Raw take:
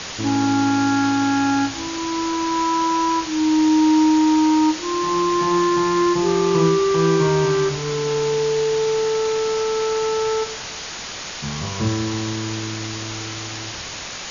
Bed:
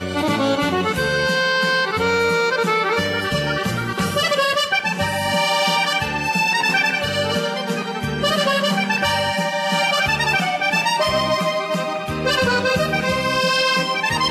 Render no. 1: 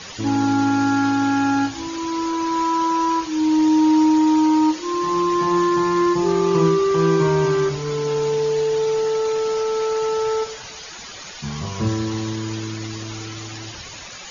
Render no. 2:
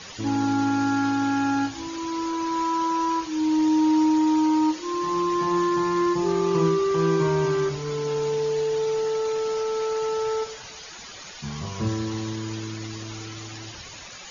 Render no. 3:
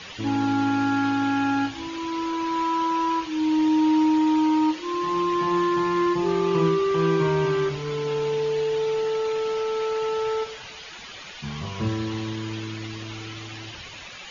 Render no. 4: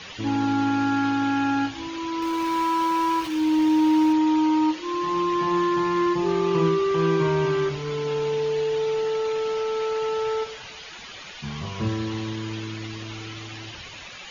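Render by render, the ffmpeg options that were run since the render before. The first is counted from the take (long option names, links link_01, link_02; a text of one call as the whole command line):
ffmpeg -i in.wav -af "afftdn=noise_reduction=12:noise_floor=-32" out.wav
ffmpeg -i in.wav -af "volume=-4.5dB" out.wav
ffmpeg -i in.wav -filter_complex "[0:a]acrossover=split=4100[link_01][link_02];[link_02]acompressor=threshold=-53dB:ratio=4:attack=1:release=60[link_03];[link_01][link_03]amix=inputs=2:normalize=0,equalizer=frequency=2900:width_type=o:width=1.1:gain=6" out.wav
ffmpeg -i in.wav -filter_complex "[0:a]asettb=1/sr,asplit=3[link_01][link_02][link_03];[link_01]atrim=end=2.224[link_04];[link_02]atrim=start=2.22:end=4.13,asetpts=PTS-STARTPTS,afade=type=in:duration=0.004:curve=qsin,afade=type=out:start_time=1.906:duration=0.004:curve=qsin,aeval=exprs='val(0)+0.5*0.0211*sgn(val(0))':channel_layout=same[link_05];[link_03]atrim=start=4.126[link_06];[link_04][link_05]acrossfade=duration=0.004:curve1=hsin:curve2=qsin[link_07];[link_07][link_06]acrossfade=duration=0.004:curve1=qsin:curve2=hsin" out.wav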